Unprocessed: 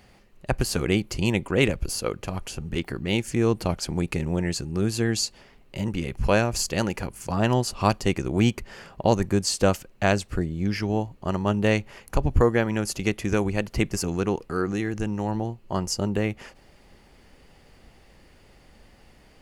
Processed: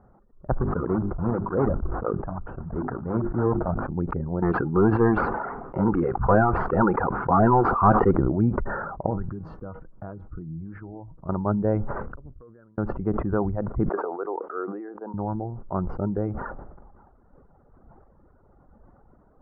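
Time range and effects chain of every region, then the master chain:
0.57–3.90 s: block-companded coder 3-bit + low-pass 2.1 kHz + hum notches 50/100/150/200/250/300/350/400 Hz
4.42–8.11 s: overdrive pedal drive 25 dB, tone 4.2 kHz, clips at -6 dBFS + band-stop 590 Hz, Q 5.2
9.06–11.29 s: tone controls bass +5 dB, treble +15 dB + compression 8:1, threshold -25 dBFS + feedback comb 160 Hz, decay 0.28 s
12.02–12.78 s: inverted gate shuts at -22 dBFS, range -36 dB + peaking EQ 810 Hz -12 dB 0.55 oct + compression 2.5:1, threshold -53 dBFS
13.89–15.14 s: high-pass 370 Hz 24 dB/octave + distance through air 210 m
whole clip: reverb removal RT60 1.4 s; Chebyshev low-pass 1.4 kHz, order 5; decay stretcher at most 35 dB/s

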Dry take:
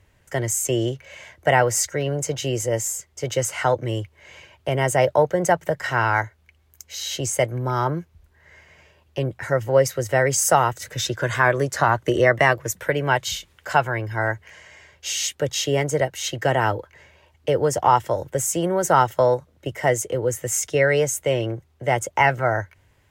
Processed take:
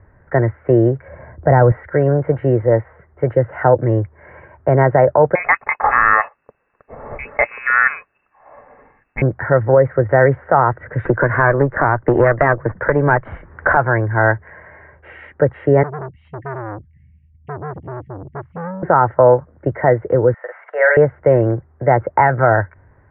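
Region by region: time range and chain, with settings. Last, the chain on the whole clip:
1.08–1.72 s: low-pass 1.4 kHz 6 dB/octave + bass shelf 260 Hz +10.5 dB + tape noise reduction on one side only decoder only
3.33–3.80 s: peaking EQ 1.2 kHz -8 dB 0.9 oct + band-stop 2.2 kHz, Q 9.1
5.35–9.22 s: waveshaping leveller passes 1 + frequency inversion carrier 2.7 kHz
11.05–13.77 s: valve stage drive 13 dB, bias 0.75 + three bands compressed up and down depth 100%
15.83–18.83 s: inverse Chebyshev band-stop 400–1500 Hz, stop band 50 dB + transformer saturation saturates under 3.4 kHz
20.34–20.97 s: inverse Chebyshev high-pass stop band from 250 Hz, stop band 50 dB + doubling 47 ms -4 dB
whole clip: steep low-pass 1.8 kHz 48 dB/octave; loudness maximiser +11 dB; trim -1 dB

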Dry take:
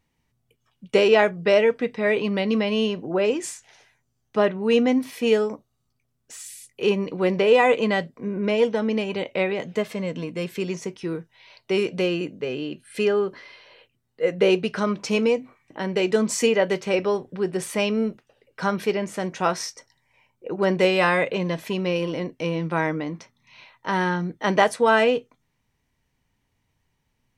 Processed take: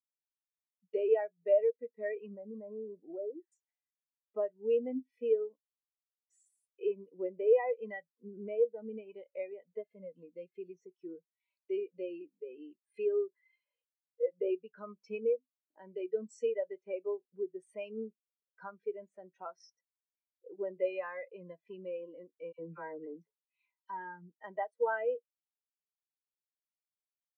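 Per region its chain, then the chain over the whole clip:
2.34–3.52 s: low-pass 1.7 kHz 24 dB/octave + compression 2.5:1, threshold -24 dBFS
22.52–23.90 s: bass shelf 210 Hz +3.5 dB + small resonant body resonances 430/3600 Hz, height 13 dB, ringing for 100 ms + phase dispersion lows, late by 67 ms, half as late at 1.6 kHz
whole clip: high-pass 510 Hz 6 dB/octave; compression 2:1, threshold -41 dBFS; spectral contrast expander 2.5:1; trim +1.5 dB

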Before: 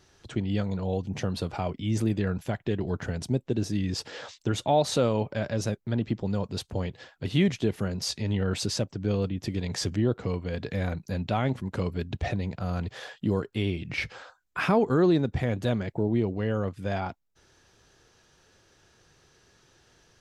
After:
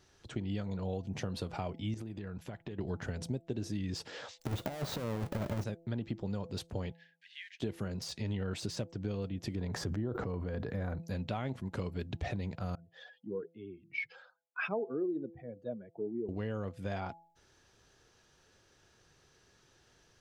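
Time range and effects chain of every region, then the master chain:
1.94–2.78 s: treble shelf 6.6 kHz -6.5 dB + compression 10:1, threshold -32 dBFS
4.39–5.64 s: square wave that keeps the level + compressor with a negative ratio -24 dBFS, ratio -0.5
6.93–7.60 s: block-companded coder 5-bit + Chebyshev high-pass 1.6 kHz, order 8 + tape spacing loss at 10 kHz 31 dB
9.55–10.99 s: high-order bell 4.7 kHz -10.5 dB 2.6 oct + decay stretcher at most 28 dB/s
12.75–16.29 s: spectral contrast enhancement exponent 2 + high-pass 350 Hz + three bands expanded up and down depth 70%
whole clip: de-esser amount 75%; de-hum 167.5 Hz, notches 5; compression 5:1, threshold -27 dBFS; trim -5 dB

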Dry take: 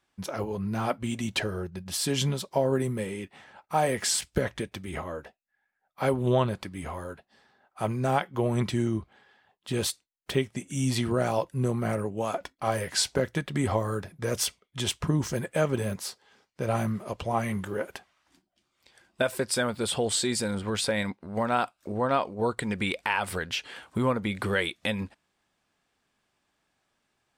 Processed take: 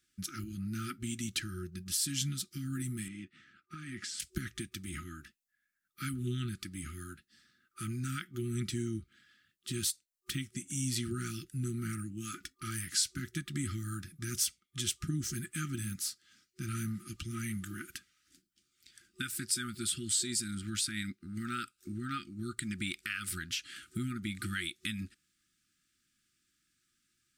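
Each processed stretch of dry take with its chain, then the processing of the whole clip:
3.08–4.20 s: high-pass 140 Hz 6 dB/octave + compression 5:1, threshold -26 dBFS + tape spacing loss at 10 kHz 21 dB
whole clip: FFT band-reject 370–1200 Hz; tone controls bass +2 dB, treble +11 dB; compression 1.5:1, threshold -35 dBFS; trim -5 dB

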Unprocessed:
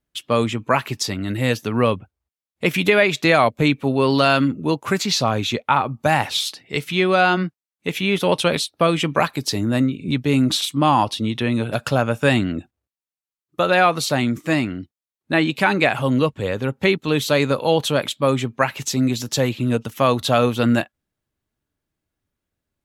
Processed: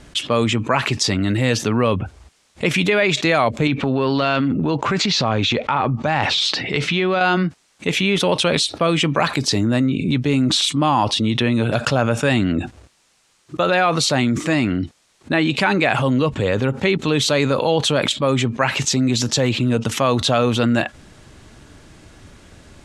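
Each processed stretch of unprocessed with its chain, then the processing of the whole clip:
3.67–7.21 s: low-pass 4.5 kHz + transient shaper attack -4 dB, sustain +5 dB + compression 2:1, threshold -22 dBFS
whole clip: low-pass 8.8 kHz 24 dB/octave; level flattener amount 70%; trim -3 dB

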